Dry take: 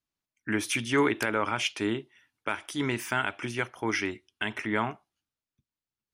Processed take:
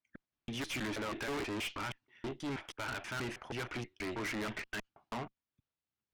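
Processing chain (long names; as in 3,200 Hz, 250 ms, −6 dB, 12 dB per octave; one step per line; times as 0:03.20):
slices reordered back to front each 160 ms, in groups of 3
Bessel low-pass filter 3,200 Hz, order 2
tube saturation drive 38 dB, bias 0.6
level +2.5 dB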